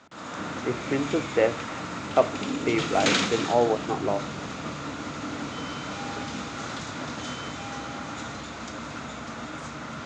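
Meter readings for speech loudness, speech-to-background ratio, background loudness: -27.0 LUFS, 5.0 dB, -32.0 LUFS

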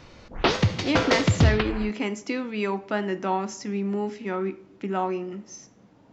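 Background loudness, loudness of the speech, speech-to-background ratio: -23.5 LUFS, -28.5 LUFS, -5.0 dB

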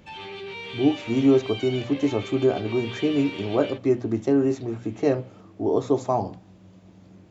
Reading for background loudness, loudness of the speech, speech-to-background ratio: -36.0 LUFS, -24.0 LUFS, 12.0 dB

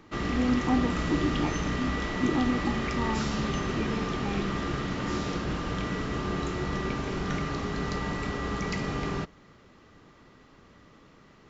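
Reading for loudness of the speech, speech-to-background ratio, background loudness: -32.0 LUFS, -1.0 dB, -31.0 LUFS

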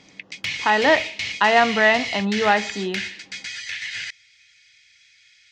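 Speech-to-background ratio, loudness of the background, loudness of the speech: 8.5 dB, -28.0 LUFS, -19.5 LUFS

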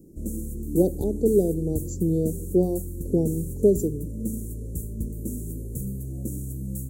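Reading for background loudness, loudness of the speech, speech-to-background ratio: -33.5 LUFS, -25.0 LUFS, 8.5 dB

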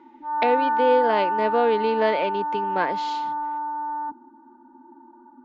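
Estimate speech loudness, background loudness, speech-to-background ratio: -24.0 LUFS, -25.5 LUFS, 1.5 dB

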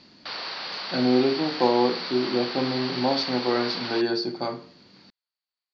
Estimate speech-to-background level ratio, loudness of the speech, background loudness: 6.5 dB, -25.0 LUFS, -31.5 LUFS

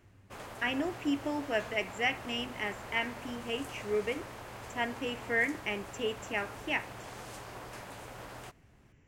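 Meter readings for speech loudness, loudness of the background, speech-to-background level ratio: -34.0 LUFS, -45.5 LUFS, 11.5 dB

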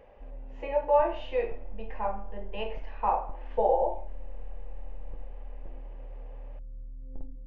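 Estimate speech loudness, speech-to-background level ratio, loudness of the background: -30.0 LUFS, 17.0 dB, -47.0 LUFS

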